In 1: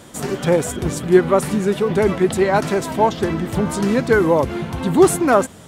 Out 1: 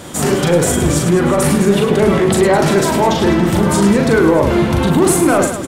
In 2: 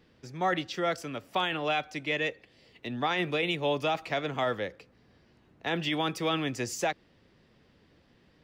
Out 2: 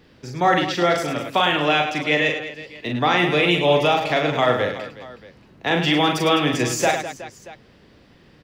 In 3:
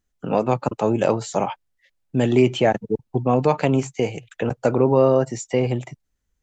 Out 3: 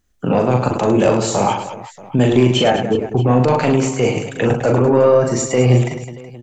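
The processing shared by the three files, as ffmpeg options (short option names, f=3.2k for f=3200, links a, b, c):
-af "acontrast=68,alimiter=limit=-10.5dB:level=0:latency=1:release=15,aecho=1:1:40|104|206.4|370.2|632.4:0.631|0.398|0.251|0.158|0.1,volume=2.5dB"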